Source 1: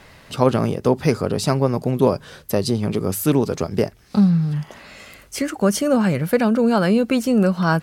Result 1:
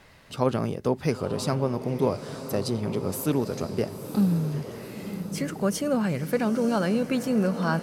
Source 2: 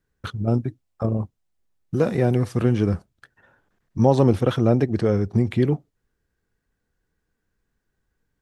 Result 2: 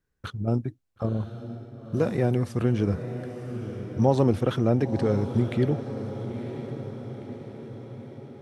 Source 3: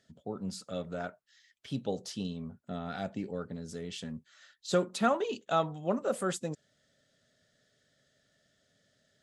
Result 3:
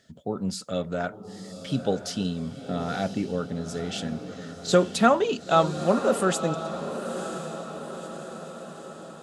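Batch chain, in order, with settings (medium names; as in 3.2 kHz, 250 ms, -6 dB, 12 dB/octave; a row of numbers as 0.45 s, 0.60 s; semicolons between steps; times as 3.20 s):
echo that smears into a reverb 976 ms, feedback 57%, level -10 dB; normalise loudness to -27 LUFS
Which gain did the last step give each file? -7.5 dB, -4.0 dB, +8.5 dB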